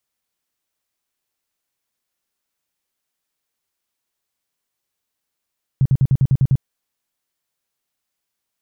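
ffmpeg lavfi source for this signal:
ffmpeg -f lavfi -i "aevalsrc='0.299*sin(2*PI*133*mod(t,0.1))*lt(mod(t,0.1),6/133)':duration=0.8:sample_rate=44100" out.wav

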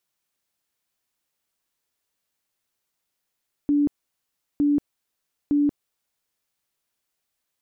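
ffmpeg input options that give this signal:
ffmpeg -f lavfi -i "aevalsrc='0.15*sin(2*PI*290*mod(t,0.91))*lt(mod(t,0.91),53/290)':duration=2.73:sample_rate=44100" out.wav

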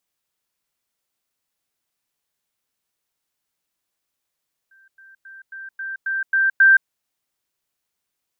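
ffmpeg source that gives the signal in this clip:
ffmpeg -f lavfi -i "aevalsrc='pow(10,(-50.5+6*floor(t/0.27))/20)*sin(2*PI*1570*t)*clip(min(mod(t,0.27),0.17-mod(t,0.27))/0.005,0,1)':duration=2.16:sample_rate=44100" out.wav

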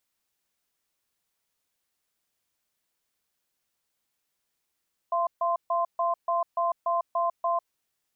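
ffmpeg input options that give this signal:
ffmpeg -f lavfi -i "aevalsrc='0.0531*(sin(2*PI*682*t)+sin(2*PI*1040*t))*clip(min(mod(t,0.29),0.15-mod(t,0.29))/0.005,0,1)':duration=2.6:sample_rate=44100" out.wav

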